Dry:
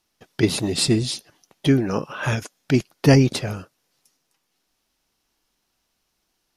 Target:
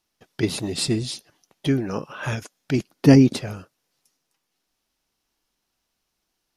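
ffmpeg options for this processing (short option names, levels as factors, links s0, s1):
-filter_complex "[0:a]asettb=1/sr,asplit=3[s0][s1][s2];[s0]atrim=end=2.784[s3];[s1]atrim=start=2.78:end=3.37,asetpts=PTS-STARTPTS,afade=t=in:d=0.004:c=qsin,afade=t=out:st=0.586:d=0.004:c=qsin,equalizer=f=250:w=1.2:g=9[s4];[s2]atrim=start=3.366[s5];[s3][s4]acrossfade=d=0.004:c1=hsin:c2=qsin[s6];[s6][s5]acrossfade=d=0.004:c1=qsin:c2=hsin,volume=0.631"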